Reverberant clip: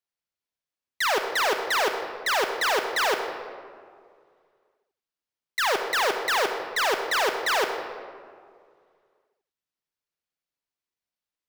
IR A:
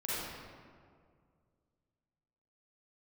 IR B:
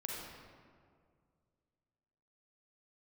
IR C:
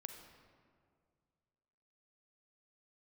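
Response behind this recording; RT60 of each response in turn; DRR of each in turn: C; 2.1 s, 2.1 s, 2.1 s; -9.5 dB, -3.0 dB, 5.0 dB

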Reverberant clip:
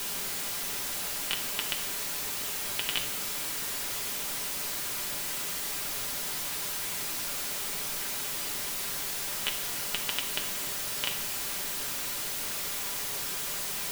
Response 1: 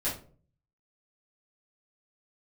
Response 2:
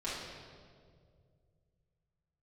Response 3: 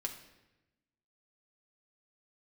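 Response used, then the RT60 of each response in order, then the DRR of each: 3; 0.45 s, 2.1 s, 1.0 s; -10.0 dB, -9.5 dB, 1.5 dB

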